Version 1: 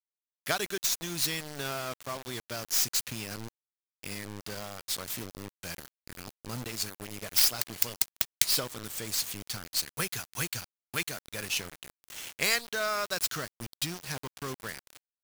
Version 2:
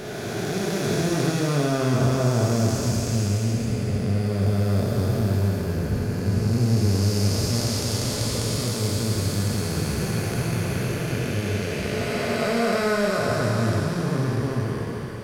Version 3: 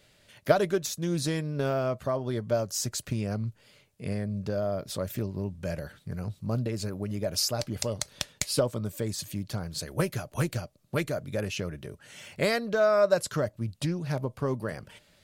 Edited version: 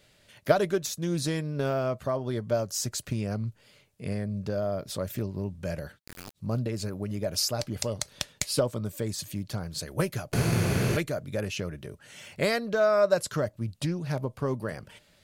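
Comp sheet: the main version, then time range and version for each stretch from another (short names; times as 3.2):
3
5.95–6.39 from 1, crossfade 0.10 s
10.33–10.97 from 2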